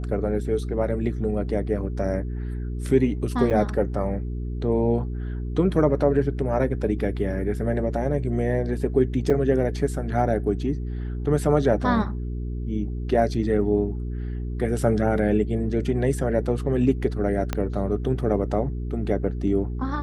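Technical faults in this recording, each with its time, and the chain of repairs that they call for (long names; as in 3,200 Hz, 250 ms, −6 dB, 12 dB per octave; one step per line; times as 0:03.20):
mains hum 60 Hz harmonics 7 −29 dBFS
0:03.50–0:03.51: drop-out 8.1 ms
0:09.30: drop-out 3.1 ms
0:17.53: click −11 dBFS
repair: click removal
hum removal 60 Hz, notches 7
repair the gap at 0:03.50, 8.1 ms
repair the gap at 0:09.30, 3.1 ms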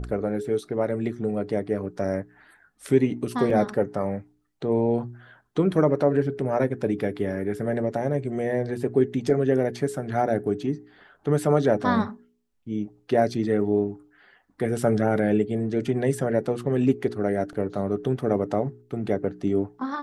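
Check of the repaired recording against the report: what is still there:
0:17.53: click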